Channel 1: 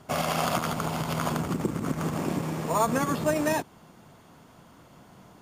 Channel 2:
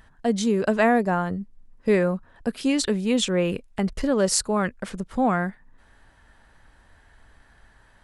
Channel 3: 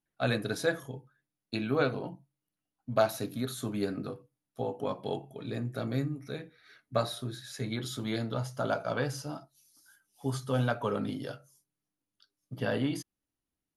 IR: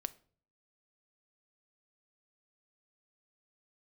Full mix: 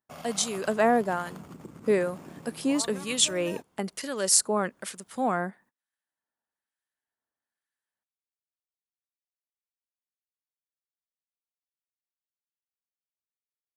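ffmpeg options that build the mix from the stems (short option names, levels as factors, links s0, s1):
-filter_complex "[0:a]volume=0.15[s0];[1:a]highpass=250,aemphasis=mode=production:type=50fm,acrossover=split=1400[s1][s2];[s1]aeval=exprs='val(0)*(1-0.7/2+0.7/2*cos(2*PI*1.1*n/s))':c=same[s3];[s2]aeval=exprs='val(0)*(1-0.7/2-0.7/2*cos(2*PI*1.1*n/s))':c=same[s4];[s3][s4]amix=inputs=2:normalize=0,volume=0.841,asplit=2[s5][s6];[s6]volume=0.1[s7];[3:a]atrim=start_sample=2205[s8];[s7][s8]afir=irnorm=-1:irlink=0[s9];[s0][s5][s9]amix=inputs=3:normalize=0,agate=range=0.0251:threshold=0.00158:ratio=16:detection=peak"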